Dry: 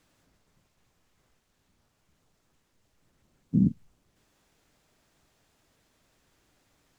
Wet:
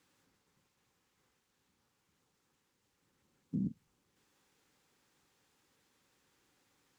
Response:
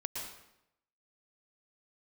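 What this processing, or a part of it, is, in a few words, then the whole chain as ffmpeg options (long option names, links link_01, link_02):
PA system with an anti-feedback notch: -af "highpass=frequency=180:poles=1,asuperstop=centerf=650:order=4:qfactor=4.6,alimiter=limit=-23dB:level=0:latency=1:release=100,volume=-4dB"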